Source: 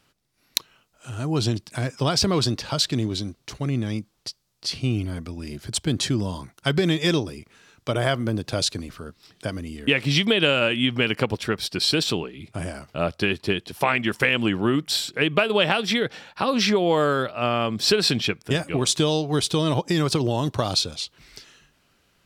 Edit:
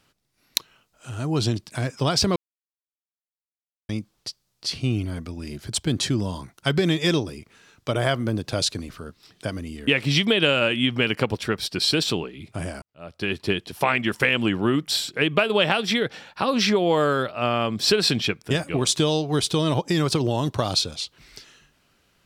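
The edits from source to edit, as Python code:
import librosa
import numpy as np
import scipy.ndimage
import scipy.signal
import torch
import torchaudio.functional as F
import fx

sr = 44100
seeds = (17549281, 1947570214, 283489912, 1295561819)

y = fx.edit(x, sr, fx.silence(start_s=2.36, length_s=1.53),
    fx.fade_in_span(start_s=12.82, length_s=0.55, curve='qua'), tone=tone)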